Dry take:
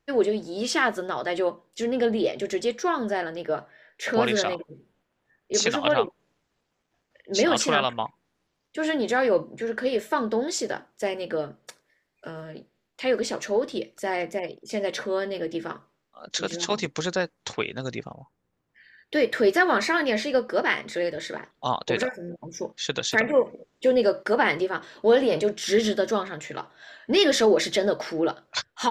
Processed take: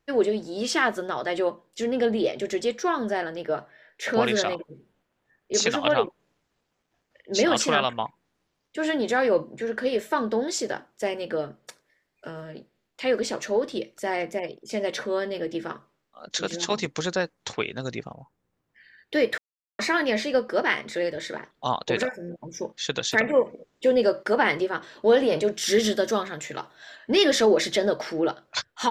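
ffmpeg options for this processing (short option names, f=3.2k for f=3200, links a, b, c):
-filter_complex "[0:a]asettb=1/sr,asplit=3[a][b][c];[a]atrim=end=25.534[d];[b]atrim=start=25.53:end=26.96,asetpts=PTS-STARTPTS,afade=t=in:d=0.004:c=qsin,afade=t=out:st=1.426:d=0.004:c=qsin,highshelf=f=6.1k:g=9[e];[c]atrim=start=26.956[f];[d][e]acrossfade=d=0.004:c1=hsin:c2=qsin[g];[g][f]acrossfade=d=0.004:c1=qsin:c2=hsin,asplit=3[h][i][j];[h]atrim=end=19.38,asetpts=PTS-STARTPTS,afade=t=out:st=19.376:d=0.004:c=hsin[k];[i]atrim=start=19.38:end=19.79,asetpts=PTS-STARTPTS,volume=0[l];[j]atrim=start=19.79,asetpts=PTS-STARTPTS,afade=t=in:d=0.004:c=hsin[m];[k][l][m]concat=n=3:v=0:a=1"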